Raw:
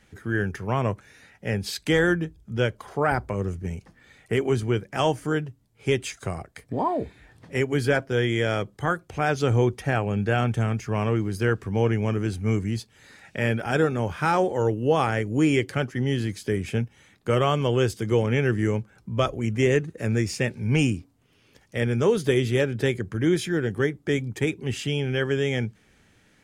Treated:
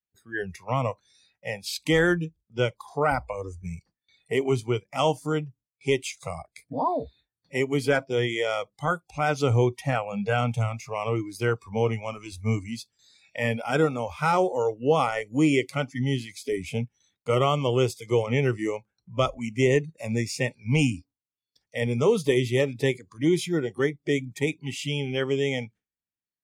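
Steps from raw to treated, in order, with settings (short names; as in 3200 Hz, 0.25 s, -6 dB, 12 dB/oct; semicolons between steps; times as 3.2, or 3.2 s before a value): spectral noise reduction 22 dB; gate with hold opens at -56 dBFS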